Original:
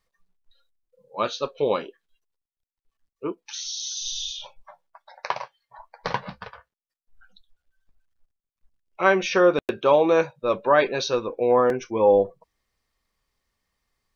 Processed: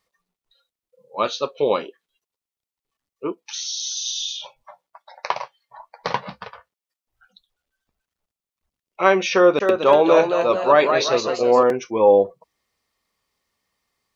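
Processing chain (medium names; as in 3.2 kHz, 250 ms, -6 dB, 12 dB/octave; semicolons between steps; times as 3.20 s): high-pass 190 Hz 6 dB/octave; peaking EQ 1.6 kHz -5.5 dB 0.21 oct; 9.34–11.63 s: ever faster or slower copies 261 ms, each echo +1 st, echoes 3, each echo -6 dB; trim +4 dB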